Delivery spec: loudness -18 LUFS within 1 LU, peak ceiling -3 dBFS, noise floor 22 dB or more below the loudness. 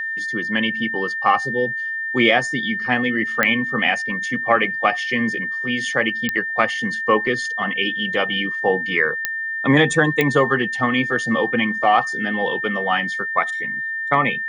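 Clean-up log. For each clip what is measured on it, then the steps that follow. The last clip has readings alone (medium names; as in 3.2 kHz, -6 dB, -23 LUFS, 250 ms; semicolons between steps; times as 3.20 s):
clicks found 4; steady tone 1.8 kHz; tone level -23 dBFS; loudness -19.5 LUFS; peak level -2.0 dBFS; loudness target -18.0 LUFS
-> de-click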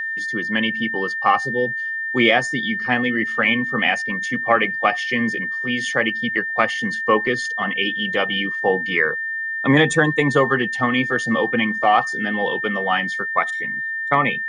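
clicks found 0; steady tone 1.8 kHz; tone level -23 dBFS
-> band-stop 1.8 kHz, Q 30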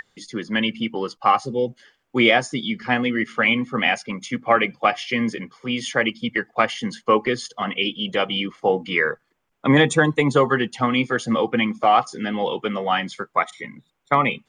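steady tone not found; loudness -21.5 LUFS; peak level -1.5 dBFS; loudness target -18.0 LUFS
-> trim +3.5 dB; peak limiter -3 dBFS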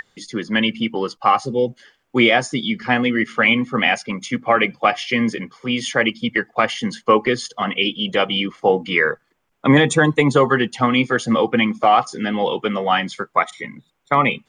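loudness -18.5 LUFS; peak level -3.0 dBFS; noise floor -66 dBFS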